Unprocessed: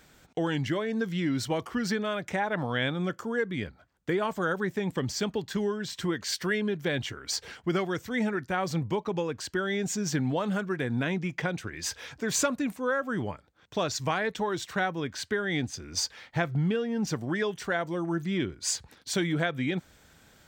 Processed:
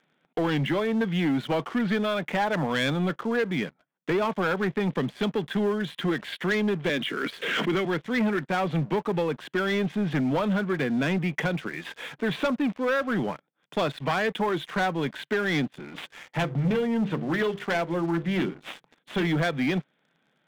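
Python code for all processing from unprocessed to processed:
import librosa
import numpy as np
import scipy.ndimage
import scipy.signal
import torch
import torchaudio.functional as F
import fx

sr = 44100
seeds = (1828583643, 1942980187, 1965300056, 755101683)

y = fx.chain(x, sr, fx.highpass(hz=190.0, slope=24),
    fx.peak_eq(hz=820.0, db=-14.0, octaves=0.57),
    fx.pre_swell(db_per_s=38.0), at=(6.89, 7.85))
y = fx.chain(y, sr, fx.self_delay(depth_ms=0.23),
    fx.lowpass(hz=4400.0, slope=12),
    fx.hum_notches(base_hz=50, count=10), at=(15.85, 19.27))
y = scipy.signal.sosfilt(scipy.signal.cheby1(5, 1.0, [140.0, 3500.0], 'bandpass', fs=sr, output='sos'), y)
y = fx.leveller(y, sr, passes=3)
y = y * 10.0 ** (-4.5 / 20.0)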